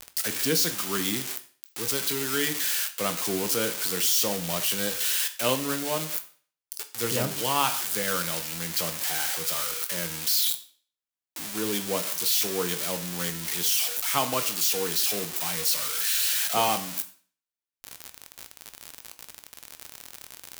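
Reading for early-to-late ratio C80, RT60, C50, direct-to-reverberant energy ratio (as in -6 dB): 17.5 dB, 0.45 s, 14.0 dB, 8.0 dB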